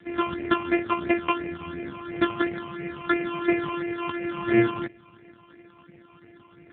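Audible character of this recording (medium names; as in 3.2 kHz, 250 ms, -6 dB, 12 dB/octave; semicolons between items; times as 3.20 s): a buzz of ramps at a fixed pitch in blocks of 128 samples; phasing stages 8, 2.9 Hz, lowest notch 520–1100 Hz; a quantiser's noise floor 12-bit, dither none; AMR-NB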